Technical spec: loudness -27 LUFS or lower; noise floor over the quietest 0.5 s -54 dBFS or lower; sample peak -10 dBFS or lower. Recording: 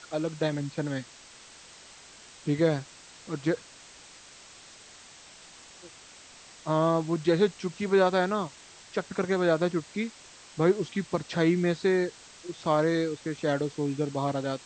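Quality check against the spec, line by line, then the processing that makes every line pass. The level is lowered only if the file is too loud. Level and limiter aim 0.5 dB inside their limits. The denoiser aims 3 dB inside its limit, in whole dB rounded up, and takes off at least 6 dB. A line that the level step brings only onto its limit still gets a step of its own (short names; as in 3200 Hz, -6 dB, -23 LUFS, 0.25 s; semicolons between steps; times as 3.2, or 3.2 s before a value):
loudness -28.0 LUFS: OK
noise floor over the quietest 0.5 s -51 dBFS: fail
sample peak -11.0 dBFS: OK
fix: denoiser 6 dB, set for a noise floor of -51 dBFS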